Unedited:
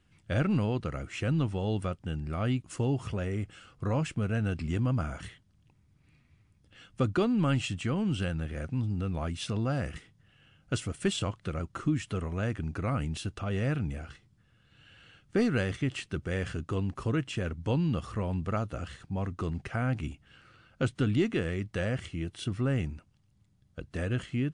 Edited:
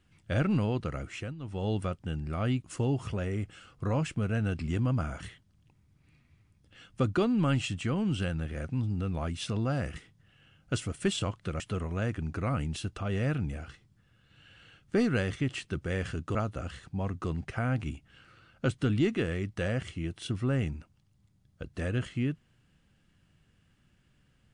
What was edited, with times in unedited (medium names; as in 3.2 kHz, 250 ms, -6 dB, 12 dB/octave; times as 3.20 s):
1.09–1.65 s: dip -17 dB, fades 0.26 s
11.60–12.01 s: delete
16.76–18.52 s: delete